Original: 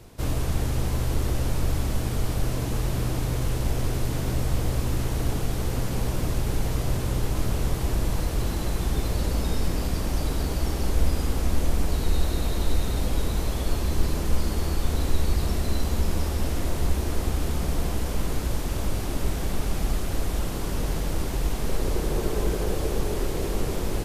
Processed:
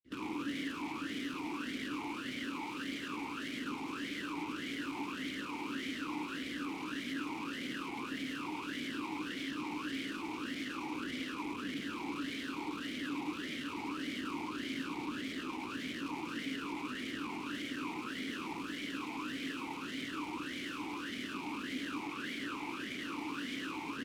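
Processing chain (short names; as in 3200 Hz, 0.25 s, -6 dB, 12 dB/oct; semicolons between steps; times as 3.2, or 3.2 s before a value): octaver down 1 oct, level +3 dB; AGC gain up to 8 dB; limiter -12.5 dBFS, peak gain reduction 10 dB; grains 0.182 s, grains 20/s; wrapped overs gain 29 dB; on a send: echo 0.104 s -4.5 dB; on the sum: vowel sweep i-u 1.7 Hz; gain +7 dB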